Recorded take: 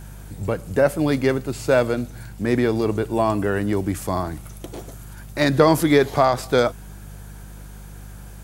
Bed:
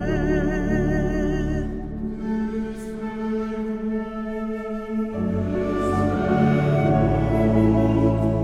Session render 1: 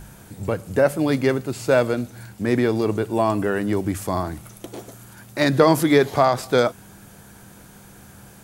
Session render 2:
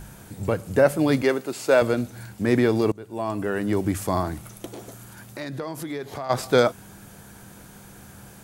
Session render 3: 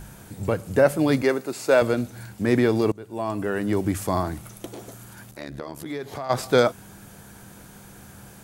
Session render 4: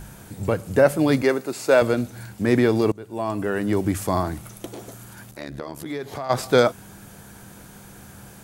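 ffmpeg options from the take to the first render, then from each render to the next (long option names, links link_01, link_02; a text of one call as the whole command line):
ffmpeg -i in.wav -af "bandreject=frequency=50:width_type=h:width=4,bandreject=frequency=100:width_type=h:width=4,bandreject=frequency=150:width_type=h:width=4" out.wav
ffmpeg -i in.wav -filter_complex "[0:a]asettb=1/sr,asplit=3[link_01][link_02][link_03];[link_01]atrim=end=1.224[link_04];[link_02]atrim=start=1.22:end=1.82,asetpts=PTS-STARTPTS,afade=type=in:duration=0.004:curve=qsin,afade=type=out:start_time=0.596:duration=0.004:curve=qsin,highpass=290[link_05];[link_03]atrim=start=1.816[link_06];[link_04][link_05]acrossfade=duration=0.004:curve1=hsin:curve2=qsin[link_07];[link_07][link_06]acrossfade=duration=0.004:curve1=qsin:curve2=hsin,asplit=3[link_08][link_09][link_10];[link_08]afade=type=out:start_time=4.69:duration=0.02[link_11];[link_09]acompressor=threshold=-34dB:ratio=3:attack=3.2:release=140:knee=1:detection=peak,afade=type=in:start_time=4.69:duration=0.02,afade=type=out:start_time=6.29:duration=0.02[link_12];[link_10]afade=type=in:start_time=6.29:duration=0.02[link_13];[link_11][link_12][link_13]amix=inputs=3:normalize=0,asplit=2[link_14][link_15];[link_14]atrim=end=2.92,asetpts=PTS-STARTPTS,afade=type=out:start_time=2.916:duration=0.004:curve=hsin:silence=0.0707946[link_16];[link_15]atrim=start=2.92,asetpts=PTS-STARTPTS,afade=type=in:duration=0.94:silence=0.0707946[link_17];[link_16][link_17]concat=n=2:v=0:a=1" out.wav
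ffmpeg -i in.wav -filter_complex "[0:a]asettb=1/sr,asplit=3[link_01][link_02][link_03];[link_01]atrim=end=1.164[link_04];[link_02]atrim=start=1.16:end=1.69,asetpts=PTS-STARTPTS,afade=type=in:duration=0.004:curve=qsin,afade=type=out:start_time=0.526:duration=0.004:curve=qsin,equalizer=frequency=3100:width_type=o:width=0.26:gain=-6.5[link_05];[link_03]atrim=start=1.686[link_06];[link_04][link_05]acrossfade=duration=0.004:curve1=hsin:curve2=qsin[link_07];[link_07][link_06]acrossfade=duration=0.004:curve1=qsin:curve2=hsin,asettb=1/sr,asplit=3[link_08][link_09][link_10];[link_08]atrim=end=5.314[link_11];[link_09]atrim=start=5.31:end=5.86,asetpts=PTS-STARTPTS,afade=type=in:duration=0.004:curve=qsin,afade=type=out:start_time=0.546:duration=0.004:curve=qsin,tremolo=f=73:d=0.919[link_12];[link_10]atrim=start=5.856[link_13];[link_11][link_12]acrossfade=duration=0.004:curve1=hsin:curve2=qsin[link_14];[link_14][link_13]acrossfade=duration=0.004:curve1=qsin:curve2=hsin" out.wav
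ffmpeg -i in.wav -af "volume=1.5dB" out.wav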